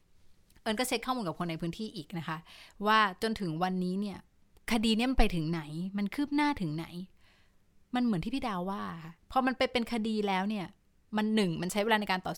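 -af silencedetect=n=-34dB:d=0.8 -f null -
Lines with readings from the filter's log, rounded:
silence_start: 7.01
silence_end: 7.94 | silence_duration: 0.93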